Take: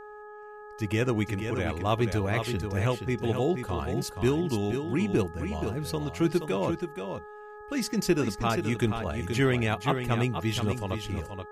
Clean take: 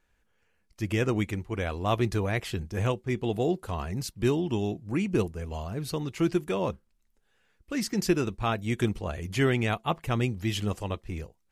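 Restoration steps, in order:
hum removal 420.3 Hz, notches 4
echo removal 477 ms −7 dB

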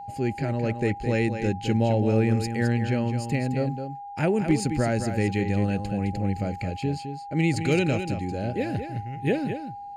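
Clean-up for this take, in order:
clipped peaks rebuilt −11.5 dBFS
notch filter 810 Hz, Q 30
echo removal 213 ms −8.5 dB

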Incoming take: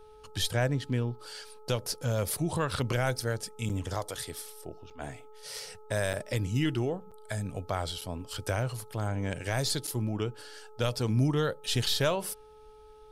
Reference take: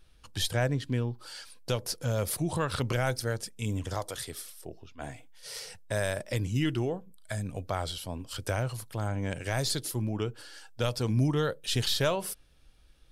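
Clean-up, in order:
hum removal 429.6 Hz, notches 3
repair the gap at 0:03.69/0:04.90/0:06.13/0:07.11/0:08.01/0:09.87, 6.4 ms

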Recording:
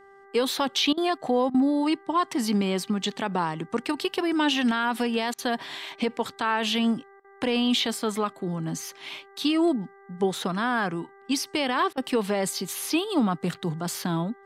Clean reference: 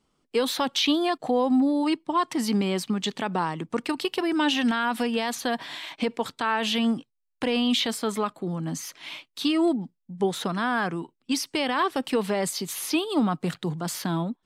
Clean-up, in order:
hum removal 394.5 Hz, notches 5
repair the gap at 0:00.93/0:01.50/0:05.34/0:07.20/0:11.93, 43 ms

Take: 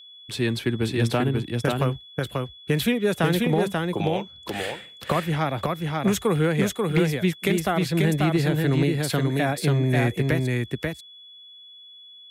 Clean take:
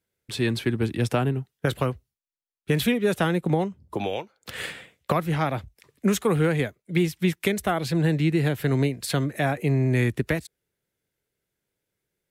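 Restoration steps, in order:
clipped peaks rebuilt −12.5 dBFS
notch filter 3,400 Hz, Q 30
echo removal 538 ms −3 dB

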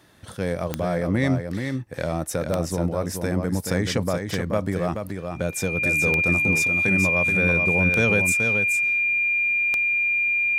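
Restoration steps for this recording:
click removal
notch filter 2,400 Hz, Q 30
echo removal 428 ms −6 dB

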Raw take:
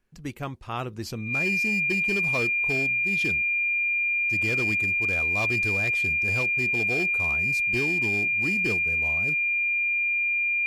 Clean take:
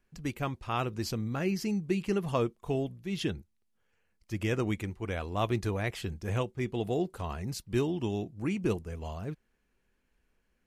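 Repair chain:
clipped peaks rebuilt −20.5 dBFS
notch filter 2,400 Hz, Q 30

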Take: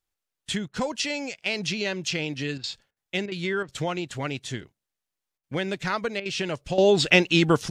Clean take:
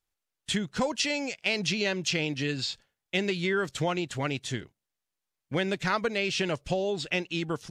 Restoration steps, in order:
repair the gap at 0:00.68/0:02.58/0:02.91/0:03.26/0:03.63/0:05.38/0:06.20, 55 ms
level 0 dB, from 0:06.78 −11.5 dB

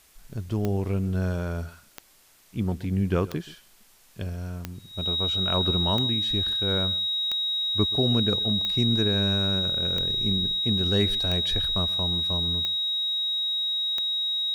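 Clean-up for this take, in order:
click removal
notch filter 3,800 Hz, Q 30
downward expander −44 dBFS, range −21 dB
echo removal 129 ms −19 dB

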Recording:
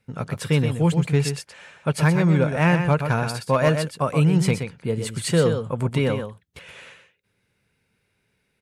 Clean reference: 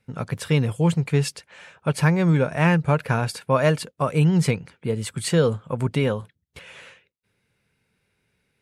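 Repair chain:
clipped peaks rebuilt −9.5 dBFS
echo removal 124 ms −7.5 dB

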